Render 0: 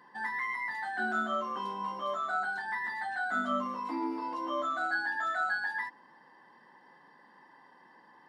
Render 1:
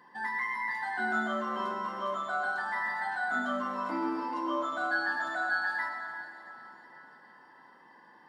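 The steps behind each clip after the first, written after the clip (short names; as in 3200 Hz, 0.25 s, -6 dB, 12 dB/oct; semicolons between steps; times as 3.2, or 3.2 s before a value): plate-style reverb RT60 4.1 s, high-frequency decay 0.85×, DRR 4.5 dB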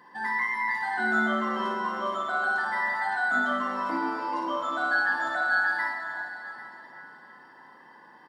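tapped delay 59/795 ms -6/-16 dB; gain +3.5 dB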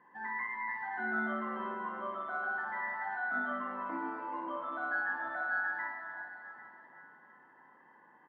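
LPF 2400 Hz 24 dB/oct; gain -9 dB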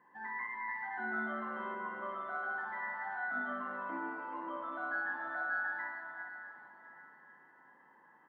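split-band echo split 1100 Hz, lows 97 ms, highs 0.402 s, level -11 dB; gain -3 dB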